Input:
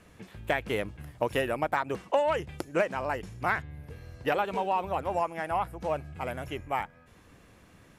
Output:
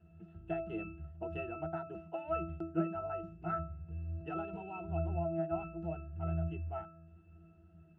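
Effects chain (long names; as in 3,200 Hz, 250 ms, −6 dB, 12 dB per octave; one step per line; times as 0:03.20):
resonances in every octave E, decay 0.4 s
level +9.5 dB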